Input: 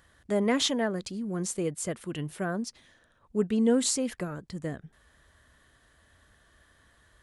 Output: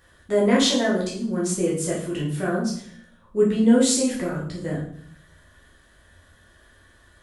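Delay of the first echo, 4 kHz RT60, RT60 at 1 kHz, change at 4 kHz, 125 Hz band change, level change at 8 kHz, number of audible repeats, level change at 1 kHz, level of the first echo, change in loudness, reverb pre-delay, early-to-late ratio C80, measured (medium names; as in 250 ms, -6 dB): no echo, 0.50 s, 0.55 s, +6.5 dB, +7.5 dB, +6.0 dB, no echo, +6.0 dB, no echo, +7.0 dB, 9 ms, 9.5 dB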